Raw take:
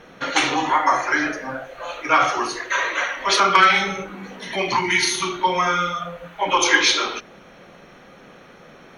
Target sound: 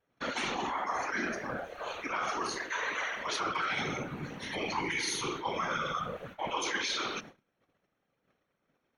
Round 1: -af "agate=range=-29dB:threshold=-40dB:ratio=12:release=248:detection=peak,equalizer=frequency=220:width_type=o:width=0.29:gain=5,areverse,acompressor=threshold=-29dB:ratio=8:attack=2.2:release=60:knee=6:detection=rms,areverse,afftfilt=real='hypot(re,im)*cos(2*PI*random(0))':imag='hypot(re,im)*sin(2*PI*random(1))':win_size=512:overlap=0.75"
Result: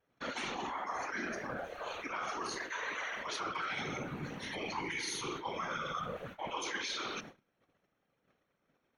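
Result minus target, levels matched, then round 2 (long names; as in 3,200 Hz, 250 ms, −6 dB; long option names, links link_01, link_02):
downward compressor: peak gain reduction +5 dB
-af "agate=range=-29dB:threshold=-40dB:ratio=12:release=248:detection=peak,equalizer=frequency=220:width_type=o:width=0.29:gain=5,areverse,acompressor=threshold=-23dB:ratio=8:attack=2.2:release=60:knee=6:detection=rms,areverse,afftfilt=real='hypot(re,im)*cos(2*PI*random(0))':imag='hypot(re,im)*sin(2*PI*random(1))':win_size=512:overlap=0.75"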